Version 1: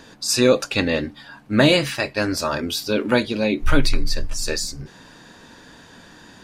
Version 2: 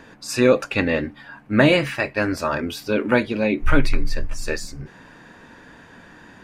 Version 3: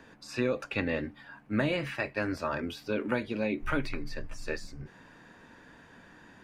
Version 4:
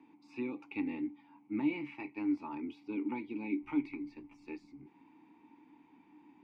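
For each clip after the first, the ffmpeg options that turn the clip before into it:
-af "highshelf=f=3000:t=q:w=1.5:g=-7.5"
-filter_complex "[0:a]acrossover=split=110|4500[s0][s1][s2];[s0]acompressor=threshold=0.0447:ratio=4[s3];[s1]acompressor=threshold=0.141:ratio=4[s4];[s2]acompressor=threshold=0.00447:ratio=4[s5];[s3][s4][s5]amix=inputs=3:normalize=0,volume=0.376"
-filter_complex "[0:a]asplit=3[s0][s1][s2];[s0]bandpass=f=300:t=q:w=8,volume=1[s3];[s1]bandpass=f=870:t=q:w=8,volume=0.501[s4];[s2]bandpass=f=2240:t=q:w=8,volume=0.355[s5];[s3][s4][s5]amix=inputs=3:normalize=0,volume=1.58"

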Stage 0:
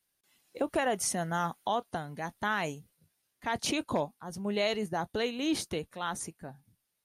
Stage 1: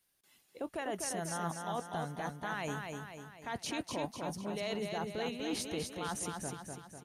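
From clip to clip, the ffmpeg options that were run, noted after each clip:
-af "areverse,acompressor=threshold=0.0126:ratio=6,areverse,aecho=1:1:248|496|744|992|1240|1488|1736:0.596|0.304|0.155|0.079|0.0403|0.0206|0.0105,volume=1.26"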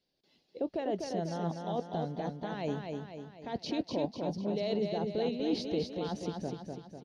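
-af "firequalizer=gain_entry='entry(110,0);entry(180,6);entry(530,7);entry(1200,-10);entry(4600,4);entry(8200,-26)':delay=0.05:min_phase=1"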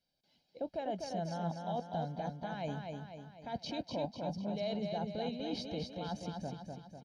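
-af "aecho=1:1:1.3:0.65,volume=0.596"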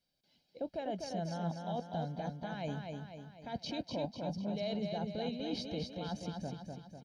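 -af "equalizer=f=830:t=o:w=0.94:g=-3.5,volume=1.12"

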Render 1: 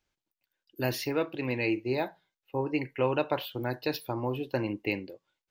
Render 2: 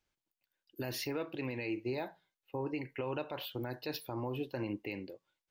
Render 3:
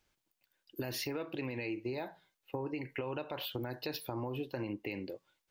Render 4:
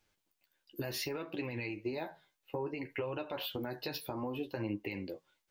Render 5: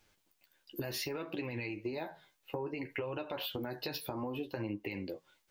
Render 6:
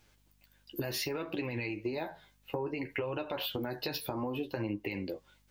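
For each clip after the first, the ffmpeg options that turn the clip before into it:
-af "alimiter=level_in=1.06:limit=0.0631:level=0:latency=1:release=85,volume=0.944,volume=0.708"
-af "acompressor=threshold=0.00708:ratio=4,volume=2.24"
-af "flanger=delay=9:depth=5.5:regen=25:speed=0.64:shape=triangular,volume=1.58"
-af "acompressor=threshold=0.00447:ratio=2,volume=2.11"
-af "aeval=exprs='val(0)+0.000282*(sin(2*PI*50*n/s)+sin(2*PI*2*50*n/s)/2+sin(2*PI*3*50*n/s)/3+sin(2*PI*4*50*n/s)/4+sin(2*PI*5*50*n/s)/5)':c=same,volume=1.41"

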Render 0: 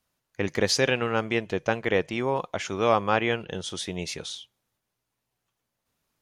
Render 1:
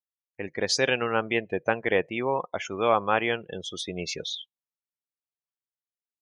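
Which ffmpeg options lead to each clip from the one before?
-af "afftdn=nr=32:nf=-35,lowshelf=f=240:g=-8.5,dynaudnorm=f=290:g=5:m=5.01,volume=0.473"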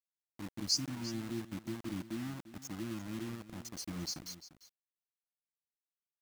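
-af "afftfilt=real='re*(1-between(b*sr/4096,350,4100))':imag='im*(1-between(b*sr/4096,350,4100))':win_size=4096:overlap=0.75,acrusher=bits=6:mix=0:aa=0.000001,aecho=1:1:347:0.178,volume=0.596"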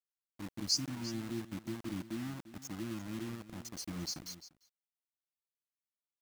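-af "agate=range=0.316:threshold=0.00178:ratio=16:detection=peak"

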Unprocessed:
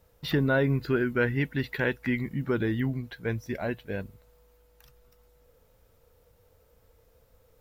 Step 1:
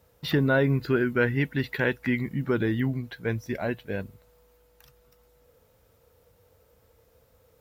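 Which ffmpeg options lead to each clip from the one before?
-af "highpass=63,volume=1.26"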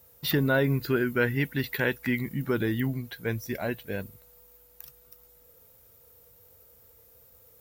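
-af "aemphasis=mode=production:type=50fm,volume=0.841"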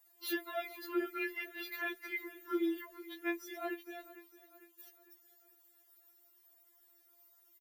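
-af "aecho=1:1:451|902|1353|1804:0.133|0.0653|0.032|0.0157,afftfilt=real='re*4*eq(mod(b,16),0)':imag='im*4*eq(mod(b,16),0)':win_size=2048:overlap=0.75,volume=0.501"

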